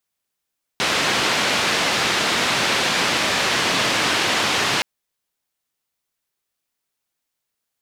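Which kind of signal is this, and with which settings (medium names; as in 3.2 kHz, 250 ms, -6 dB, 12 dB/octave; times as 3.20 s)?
noise band 130–3700 Hz, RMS -20 dBFS 4.02 s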